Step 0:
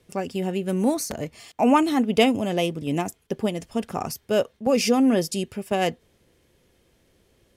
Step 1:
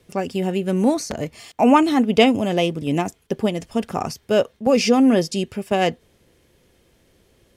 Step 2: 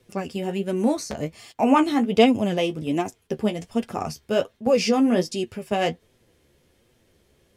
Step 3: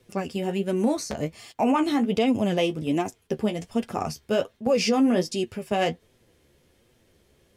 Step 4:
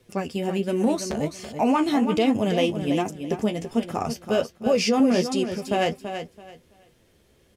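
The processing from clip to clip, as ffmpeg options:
ffmpeg -i in.wav -filter_complex "[0:a]acrossover=split=7200[link_01][link_02];[link_02]acompressor=threshold=-50dB:ratio=4:attack=1:release=60[link_03];[link_01][link_03]amix=inputs=2:normalize=0,volume=4dB" out.wav
ffmpeg -i in.wav -af "flanger=delay=7.9:depth=6.5:regen=34:speed=1.3:shape=sinusoidal" out.wav
ffmpeg -i in.wav -af "alimiter=limit=-13dB:level=0:latency=1:release=70" out.wav
ffmpeg -i in.wav -af "aecho=1:1:332|664|996:0.355|0.0781|0.0172,volume=1dB" out.wav

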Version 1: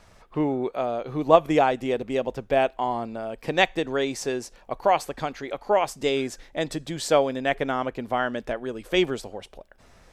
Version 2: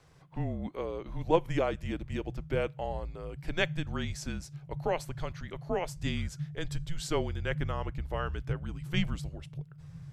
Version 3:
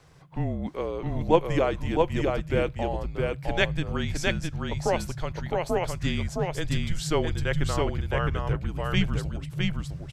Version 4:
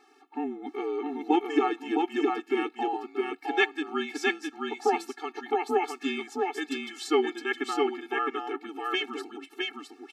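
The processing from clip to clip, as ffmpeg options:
ffmpeg -i in.wav -af "asubboost=boost=8.5:cutoff=150,afreqshift=-170,volume=-8dB" out.wav
ffmpeg -i in.wav -af "aecho=1:1:662:0.708,volume=5dB" out.wav
ffmpeg -i in.wav -af "bass=frequency=250:gain=-6,treble=frequency=4000:gain=-8,afftfilt=real='re*eq(mod(floor(b*sr/1024/230),2),1)':imag='im*eq(mod(floor(b*sr/1024/230),2),1)':win_size=1024:overlap=0.75,volume=5dB" out.wav

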